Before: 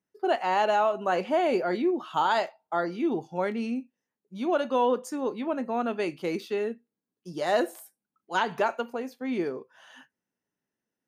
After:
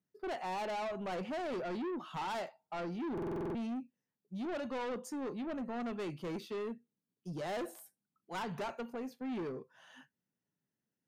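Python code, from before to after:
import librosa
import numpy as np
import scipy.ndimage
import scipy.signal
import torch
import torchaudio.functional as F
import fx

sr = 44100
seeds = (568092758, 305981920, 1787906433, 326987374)

y = fx.peak_eq(x, sr, hz=140.0, db=11.5, octaves=1.4)
y = 10.0 ** (-28.5 / 20.0) * np.tanh(y / 10.0 ** (-28.5 / 20.0))
y = fx.buffer_glitch(y, sr, at_s=(3.13,), block=2048, repeats=8)
y = y * librosa.db_to_amplitude(-7.0)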